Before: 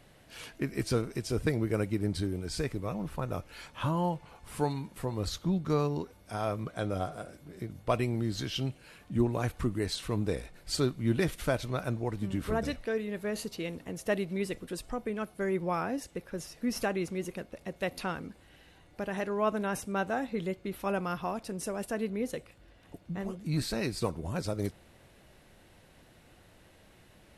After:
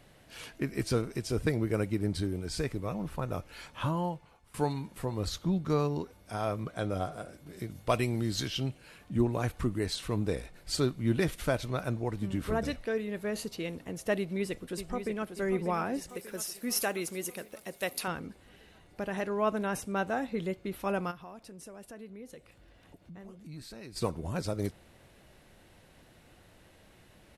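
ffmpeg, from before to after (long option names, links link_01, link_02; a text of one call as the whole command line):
ffmpeg -i in.wav -filter_complex "[0:a]asettb=1/sr,asplit=3[link_01][link_02][link_03];[link_01]atrim=end=7.464[link_04];[link_02]atrim=start=7.46:end=8.48,asetpts=PTS-STARTPTS,afade=type=in:duration=0.004:curve=qsin,afade=type=out:start_time=1.016:duration=0.004:curve=qsin,highshelf=frequency=2500:gain=7[link_05];[link_03]atrim=start=8.476[link_06];[link_04][link_05]acrossfade=duration=0.004:curve1=hsin:curve2=qsin[link_07];[link_07][link_06]acrossfade=duration=0.004:curve1=qsin:curve2=hsin,asplit=2[link_08][link_09];[link_09]afade=type=in:start_time=14.18:duration=0.01,afade=type=out:start_time=15.35:duration=0.01,aecho=0:1:590|1180|1770|2360|2950|3540|4130|4720:0.375837|0.225502|0.135301|0.0811809|0.0487085|0.0292251|0.0175351|0.010521[link_10];[link_08][link_10]amix=inputs=2:normalize=0,asettb=1/sr,asplit=3[link_11][link_12][link_13];[link_11]atrim=end=16.094[link_14];[link_12]atrim=start=16.09:end=18.08,asetpts=PTS-STARTPTS,afade=type=in:duration=0.004:curve=qsin,afade=type=out:start_time=1.986:duration=0.004:curve=qsin,aemphasis=mode=production:type=bsi[link_15];[link_13]atrim=start=18.076[link_16];[link_14][link_15]acrossfade=duration=0.004:curve1=hsin:curve2=qsin[link_17];[link_17][link_16]acrossfade=duration=0.004:curve1=qsin:curve2=hsin,asplit=3[link_18][link_19][link_20];[link_18]afade=type=out:start_time=21.1:duration=0.02[link_21];[link_19]acompressor=threshold=-54dB:ratio=2:attack=3.2:release=140:knee=1:detection=peak,afade=type=in:start_time=21.1:duration=0.02,afade=type=out:start_time=23.95:duration=0.02[link_22];[link_20]afade=type=in:start_time=23.95:duration=0.02[link_23];[link_21][link_22][link_23]amix=inputs=3:normalize=0,asplit=2[link_24][link_25];[link_24]atrim=end=4.54,asetpts=PTS-STARTPTS,afade=type=out:start_time=3.83:duration=0.71:silence=0.125893[link_26];[link_25]atrim=start=4.54,asetpts=PTS-STARTPTS,afade=type=in:duration=0.004:curve=hsin:silence=0.125893[link_27];[link_26][link_27]concat=n=2:v=0:a=1" out.wav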